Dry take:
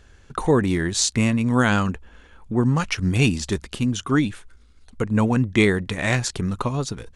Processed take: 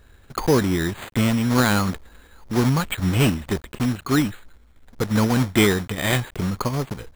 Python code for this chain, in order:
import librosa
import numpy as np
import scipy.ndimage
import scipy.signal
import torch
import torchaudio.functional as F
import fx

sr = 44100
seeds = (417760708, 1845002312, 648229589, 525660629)

y = fx.block_float(x, sr, bits=3)
y = np.repeat(scipy.signal.resample_poly(y, 1, 8), 8)[:len(y)]